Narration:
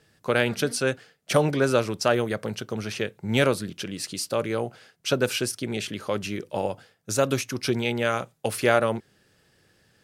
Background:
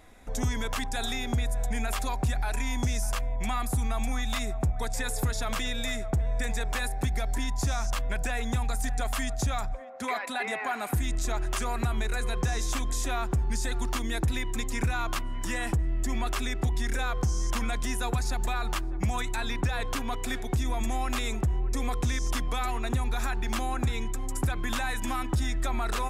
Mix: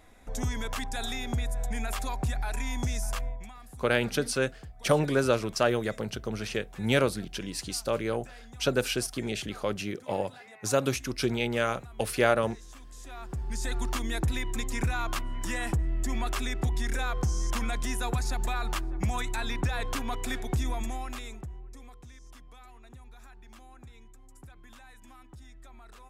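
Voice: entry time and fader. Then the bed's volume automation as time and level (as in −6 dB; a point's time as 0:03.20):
3.55 s, −3.0 dB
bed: 0:03.28 −2.5 dB
0:03.53 −19 dB
0:12.88 −19 dB
0:13.70 −1 dB
0:20.65 −1 dB
0:22.00 −22 dB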